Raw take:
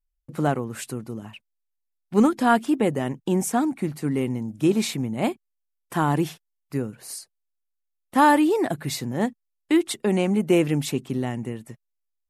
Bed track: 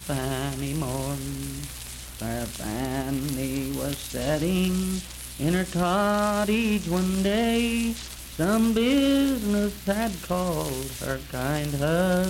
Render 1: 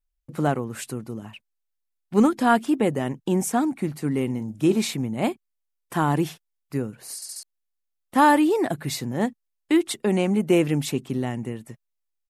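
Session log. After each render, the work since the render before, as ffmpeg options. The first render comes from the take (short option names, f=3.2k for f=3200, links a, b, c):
-filter_complex "[0:a]asplit=3[a][b][c];[a]afade=t=out:st=4.28:d=0.02[d];[b]asplit=2[e][f];[f]adelay=37,volume=-14dB[g];[e][g]amix=inputs=2:normalize=0,afade=t=in:st=4.28:d=0.02,afade=t=out:st=4.75:d=0.02[h];[c]afade=t=in:st=4.75:d=0.02[i];[d][h][i]amix=inputs=3:normalize=0,asplit=5[j][k][l][m][n];[j]atrim=end=7.222[o];[k]atrim=start=7.148:end=7.222[p];[l]atrim=start=7.148:end=7.222[q];[m]atrim=start=7.148:end=7.222[r];[n]atrim=start=7.428[s];[o][p]acrossfade=d=0.004:c1=hsin:c2=hsin[t];[t][q]acrossfade=d=0.004:c1=hsin:c2=hsin[u];[u][r]acrossfade=d=0.004:c1=hsin:c2=hsin[v];[v][s]acrossfade=d=0.004:c1=hsin:c2=hsin"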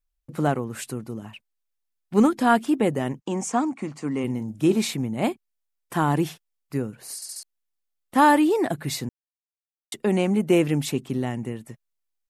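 -filter_complex "[0:a]asplit=3[a][b][c];[a]afade=t=out:st=3.2:d=0.02[d];[b]highpass=160,equalizer=f=170:t=q:w=4:g=-6,equalizer=f=370:t=q:w=4:g=-5,equalizer=f=1.1k:t=q:w=4:g=6,equalizer=f=1.6k:t=q:w=4:g=-4,equalizer=f=3.8k:t=q:w=4:g=-6,equalizer=f=6.8k:t=q:w=4:g=4,lowpass=f=7.8k:w=0.5412,lowpass=f=7.8k:w=1.3066,afade=t=in:st=3.2:d=0.02,afade=t=out:st=4.23:d=0.02[e];[c]afade=t=in:st=4.23:d=0.02[f];[d][e][f]amix=inputs=3:normalize=0,asplit=3[g][h][i];[g]atrim=end=9.09,asetpts=PTS-STARTPTS,afade=t=out:st=9.086:d=0.004:c=hsin[j];[h]atrim=start=9.09:end=9.92,asetpts=PTS-STARTPTS,volume=0[k];[i]atrim=start=9.92,asetpts=PTS-STARTPTS,afade=t=in:d=0.004:c=hsin[l];[j][k][l]concat=n=3:v=0:a=1"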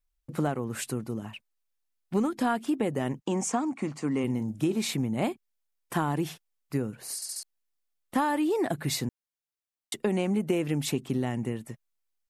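-af "acompressor=threshold=-23dB:ratio=10"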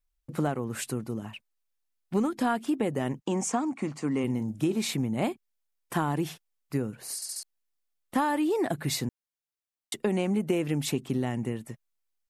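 -af anull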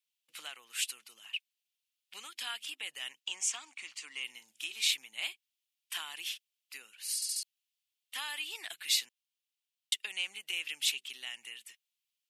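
-af "asoftclip=type=hard:threshold=-16dB,highpass=f=2.9k:t=q:w=2.9"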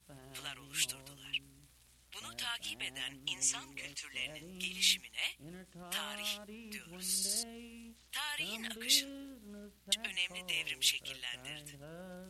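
-filter_complex "[1:a]volume=-27dB[a];[0:a][a]amix=inputs=2:normalize=0"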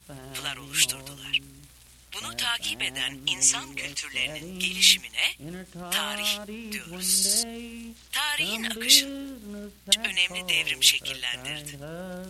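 -af "volume=12dB"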